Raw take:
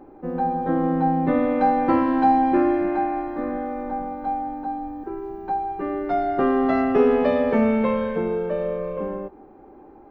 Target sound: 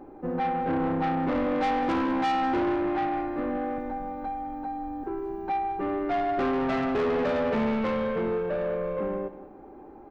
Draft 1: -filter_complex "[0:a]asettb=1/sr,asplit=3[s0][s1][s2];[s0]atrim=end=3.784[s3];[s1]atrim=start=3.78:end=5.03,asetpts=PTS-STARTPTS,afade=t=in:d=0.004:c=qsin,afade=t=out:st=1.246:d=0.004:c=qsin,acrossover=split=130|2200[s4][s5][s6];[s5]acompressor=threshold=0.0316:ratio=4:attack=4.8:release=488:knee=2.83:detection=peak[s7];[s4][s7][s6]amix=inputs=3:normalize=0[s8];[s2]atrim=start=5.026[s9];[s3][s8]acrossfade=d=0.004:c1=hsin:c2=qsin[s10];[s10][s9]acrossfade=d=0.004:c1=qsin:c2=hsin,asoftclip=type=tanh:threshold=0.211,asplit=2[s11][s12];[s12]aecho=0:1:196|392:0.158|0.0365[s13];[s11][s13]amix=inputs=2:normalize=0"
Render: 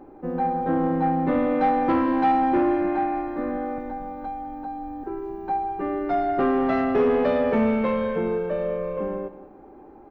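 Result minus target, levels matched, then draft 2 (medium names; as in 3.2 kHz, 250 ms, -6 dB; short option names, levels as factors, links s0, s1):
saturation: distortion -9 dB
-filter_complex "[0:a]asettb=1/sr,asplit=3[s0][s1][s2];[s0]atrim=end=3.784[s3];[s1]atrim=start=3.78:end=5.03,asetpts=PTS-STARTPTS,afade=t=in:d=0.004:c=qsin,afade=t=out:st=1.246:d=0.004:c=qsin,acrossover=split=130|2200[s4][s5][s6];[s5]acompressor=threshold=0.0316:ratio=4:attack=4.8:release=488:knee=2.83:detection=peak[s7];[s4][s7][s6]amix=inputs=3:normalize=0[s8];[s2]atrim=start=5.026[s9];[s3][s8]acrossfade=d=0.004:c1=hsin:c2=qsin[s10];[s10][s9]acrossfade=d=0.004:c1=qsin:c2=hsin,asoftclip=type=tanh:threshold=0.0708,asplit=2[s11][s12];[s12]aecho=0:1:196|392:0.158|0.0365[s13];[s11][s13]amix=inputs=2:normalize=0"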